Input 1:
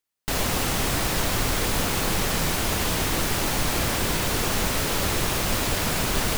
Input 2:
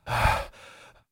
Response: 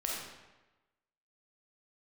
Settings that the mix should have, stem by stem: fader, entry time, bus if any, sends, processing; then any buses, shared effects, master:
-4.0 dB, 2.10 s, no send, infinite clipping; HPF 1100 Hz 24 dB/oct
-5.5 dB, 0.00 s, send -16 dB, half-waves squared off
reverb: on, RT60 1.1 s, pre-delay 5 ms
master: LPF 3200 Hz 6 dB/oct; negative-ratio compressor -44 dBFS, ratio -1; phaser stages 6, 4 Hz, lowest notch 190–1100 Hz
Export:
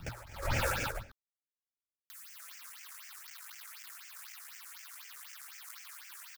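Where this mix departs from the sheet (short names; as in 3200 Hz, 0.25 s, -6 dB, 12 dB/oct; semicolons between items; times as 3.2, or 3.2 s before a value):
stem 1 -4.0 dB -> +4.5 dB; master: missing LPF 3200 Hz 6 dB/oct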